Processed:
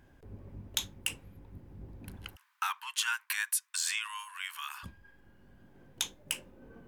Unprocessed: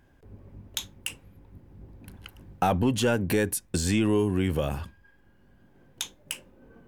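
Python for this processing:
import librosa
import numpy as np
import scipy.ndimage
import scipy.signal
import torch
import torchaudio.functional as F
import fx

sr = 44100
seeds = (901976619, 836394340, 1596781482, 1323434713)

y = fx.steep_highpass(x, sr, hz=990.0, slope=72, at=(2.35, 4.83), fade=0.02)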